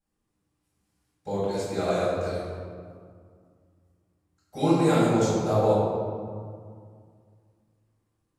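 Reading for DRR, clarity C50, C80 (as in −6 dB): −12.0 dB, −2.5 dB, −0.5 dB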